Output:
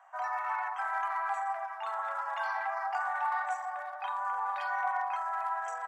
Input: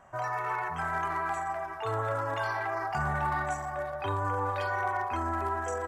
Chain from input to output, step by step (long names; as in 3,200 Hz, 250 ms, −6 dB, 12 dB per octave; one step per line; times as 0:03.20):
elliptic high-pass filter 740 Hz, stop band 50 dB
spectral tilt −2.5 dB per octave